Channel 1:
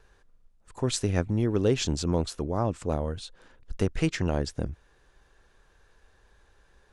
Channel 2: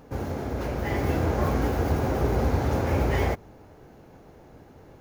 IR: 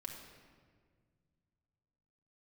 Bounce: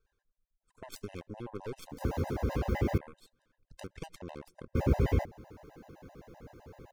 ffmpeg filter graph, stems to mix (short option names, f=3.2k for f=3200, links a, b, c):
-filter_complex "[0:a]aeval=exprs='0.211*(abs(mod(val(0)/0.211+3,4)-2)-1)':c=same,aeval=exprs='0.211*(cos(1*acos(clip(val(0)/0.211,-1,1)))-cos(1*PI/2))+0.0299*(cos(6*acos(clip(val(0)/0.211,-1,1)))-cos(6*PI/2))+0.0376*(cos(7*acos(clip(val(0)/0.211,-1,1)))-cos(7*PI/2))':c=same,acompressor=threshold=-34dB:ratio=3,volume=-4.5dB,asplit=2[a][b];[b]volume=-22dB[c];[1:a]acrossover=split=460[d][e];[e]acompressor=threshold=-36dB:ratio=6[f];[d][f]amix=inputs=2:normalize=0,adelay=1900,volume=1dB,asplit=3[g][h][i];[g]atrim=end=2.98,asetpts=PTS-STARTPTS,afade=t=out:st=2.976:d=0.004:c=hsin[j];[h]atrim=start=2.98:end=4.75,asetpts=PTS-STARTPTS,volume=0[k];[i]atrim=start=4.75,asetpts=PTS-STARTPTS,afade=t=in:d=0.004:c=hsin[l];[j][k][l]concat=n=3:v=0:a=1[m];[2:a]atrim=start_sample=2205[n];[c][n]afir=irnorm=-1:irlink=0[o];[a][m][o]amix=inputs=3:normalize=0,afftfilt=real='re*gt(sin(2*PI*7.8*pts/sr)*(1-2*mod(floor(b*sr/1024/520),2)),0)':imag='im*gt(sin(2*PI*7.8*pts/sr)*(1-2*mod(floor(b*sr/1024/520),2)),0)':win_size=1024:overlap=0.75"